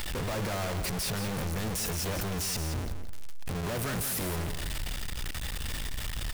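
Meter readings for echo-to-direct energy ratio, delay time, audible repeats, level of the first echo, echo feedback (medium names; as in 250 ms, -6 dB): -9.0 dB, 173 ms, 2, -9.0 dB, 21%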